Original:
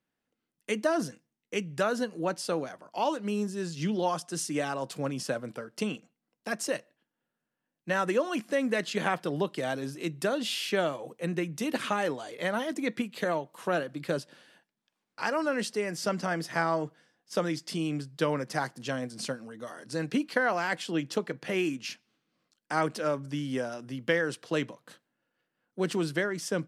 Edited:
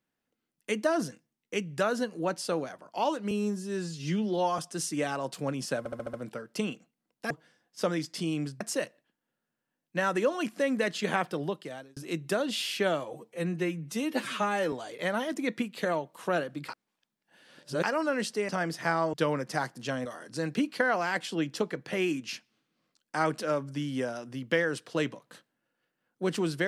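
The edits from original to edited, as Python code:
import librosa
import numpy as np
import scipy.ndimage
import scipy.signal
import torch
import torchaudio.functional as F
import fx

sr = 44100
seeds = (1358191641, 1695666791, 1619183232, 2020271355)

y = fx.edit(x, sr, fx.stretch_span(start_s=3.31, length_s=0.85, factor=1.5),
    fx.stutter(start_s=5.36, slice_s=0.07, count=6),
    fx.fade_out_span(start_s=9.2, length_s=0.69),
    fx.stretch_span(start_s=11.06, length_s=1.06, factor=1.5),
    fx.reverse_span(start_s=14.08, length_s=1.15),
    fx.cut(start_s=15.88, length_s=0.31),
    fx.move(start_s=16.84, length_s=1.3, to_s=6.53),
    fx.cut(start_s=19.06, length_s=0.56), tone=tone)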